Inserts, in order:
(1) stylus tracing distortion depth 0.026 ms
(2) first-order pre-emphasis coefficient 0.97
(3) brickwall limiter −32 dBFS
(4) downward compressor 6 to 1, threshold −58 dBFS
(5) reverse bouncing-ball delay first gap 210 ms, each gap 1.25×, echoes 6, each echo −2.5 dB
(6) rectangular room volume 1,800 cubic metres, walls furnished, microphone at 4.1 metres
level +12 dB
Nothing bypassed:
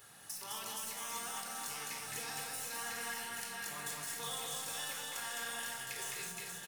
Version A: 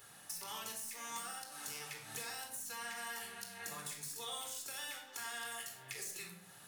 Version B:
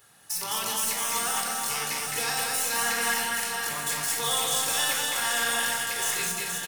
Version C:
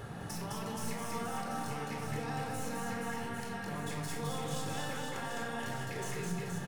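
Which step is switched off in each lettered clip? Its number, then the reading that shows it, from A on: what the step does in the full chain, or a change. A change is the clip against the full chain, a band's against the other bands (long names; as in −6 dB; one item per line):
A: 5, echo-to-direct ratio 4.5 dB to −1.0 dB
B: 4, average gain reduction 11.5 dB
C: 2, 125 Hz band +15.5 dB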